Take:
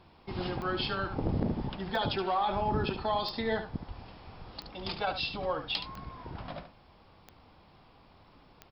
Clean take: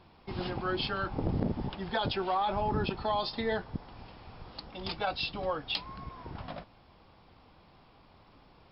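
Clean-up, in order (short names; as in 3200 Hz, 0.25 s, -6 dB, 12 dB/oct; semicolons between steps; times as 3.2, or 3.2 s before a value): de-click; de-plosive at 3.87; inverse comb 72 ms -9.5 dB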